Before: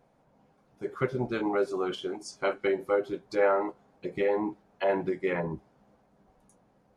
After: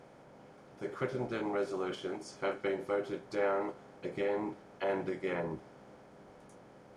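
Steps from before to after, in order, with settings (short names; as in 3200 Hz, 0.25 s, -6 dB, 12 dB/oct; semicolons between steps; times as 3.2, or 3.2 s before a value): per-bin compression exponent 0.6; gain -9 dB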